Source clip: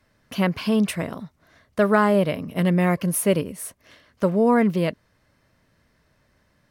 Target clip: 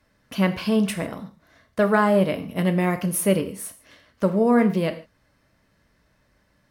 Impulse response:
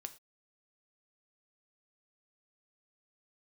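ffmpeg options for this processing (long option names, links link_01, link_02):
-filter_complex "[1:a]atrim=start_sample=2205,asetrate=34839,aresample=44100[link_01];[0:a][link_01]afir=irnorm=-1:irlink=0,volume=2.5dB"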